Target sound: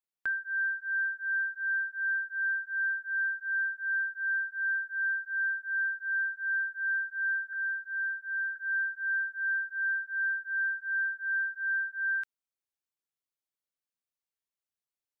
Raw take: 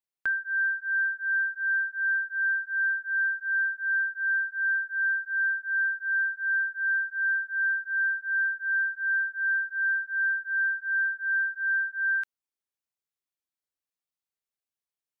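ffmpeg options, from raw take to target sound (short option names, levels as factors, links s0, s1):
-filter_complex "[0:a]asettb=1/sr,asplit=3[s0][s1][s2];[s0]atrim=end=7.534[s3];[s1]atrim=start=7.53:end=8.56,asetpts=PTS-STARTPTS,afade=t=in:d=0.004:c=qsin,afade=t=out:st=1.026:d=0.004:c=qsin,highpass=f=1500:w=0.5412,highpass=f=1500:w=1.3066[s4];[s2]atrim=start=8.556[s5];[s3][s4]acrossfade=d=0.004:c1=hsin:c2=qsin[s6];[s6][s5]acrossfade=d=0.004:c1=qsin:c2=hsin,volume=0.631"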